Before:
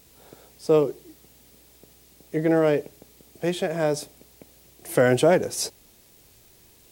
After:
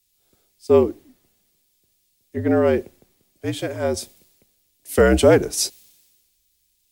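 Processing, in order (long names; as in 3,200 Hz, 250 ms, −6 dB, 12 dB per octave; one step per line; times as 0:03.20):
frequency shifter −57 Hz
multiband upward and downward expander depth 70%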